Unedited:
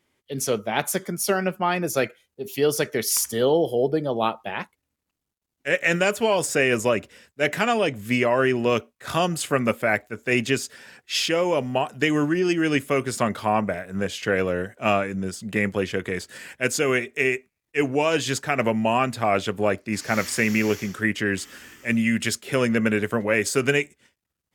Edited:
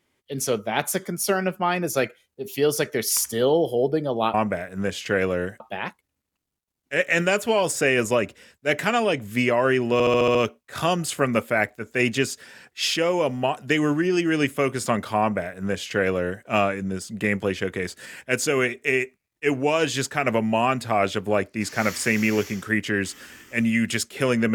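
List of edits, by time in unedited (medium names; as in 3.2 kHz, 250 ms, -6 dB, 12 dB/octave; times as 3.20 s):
8.67 s: stutter 0.07 s, 7 plays
13.51–14.77 s: copy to 4.34 s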